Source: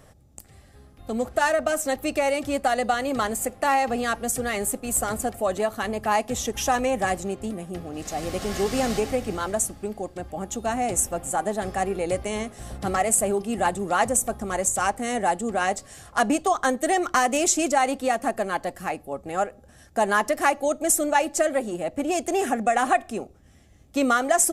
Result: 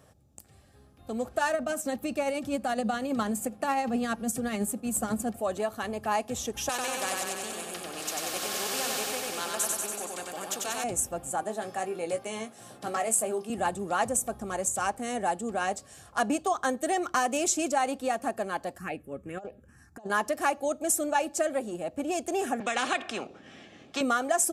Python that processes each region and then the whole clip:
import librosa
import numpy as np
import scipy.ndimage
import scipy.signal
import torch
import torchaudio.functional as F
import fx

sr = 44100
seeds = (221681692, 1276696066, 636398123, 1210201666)

y = fx.chain(x, sr, fx.peak_eq(hz=210.0, db=12.0, octaves=0.61),
    fx.tremolo(hz=12.0, depth=0.39), at=(1.54, 5.36))
y = fx.chain(y, sr, fx.highpass(hz=490.0, slope=12),
    fx.echo_feedback(ms=94, feedback_pct=55, wet_db=-4.0),
    fx.spectral_comp(ratio=2.0), at=(6.69, 10.84))
y = fx.chain(y, sr, fx.highpass(hz=120.0, slope=24),
    fx.low_shelf(hz=220.0, db=-9.0),
    fx.doubler(ms=18.0, db=-8), at=(11.43, 13.5))
y = fx.chain(y, sr, fx.env_phaser(low_hz=500.0, high_hz=2200.0, full_db=-19.0),
    fx.high_shelf(hz=8100.0, db=-9.5),
    fx.over_compress(threshold_db=-30.0, ratio=-0.5), at=(18.78, 20.1))
y = fx.chain(y, sr, fx.cheby1_bandpass(low_hz=250.0, high_hz=2700.0, order=2),
    fx.high_shelf(hz=2100.0, db=9.5),
    fx.spectral_comp(ratio=2.0), at=(22.6, 24.01))
y = scipy.signal.sosfilt(scipy.signal.butter(2, 69.0, 'highpass', fs=sr, output='sos'), y)
y = fx.notch(y, sr, hz=2000.0, q=9.6)
y = F.gain(torch.from_numpy(y), -5.5).numpy()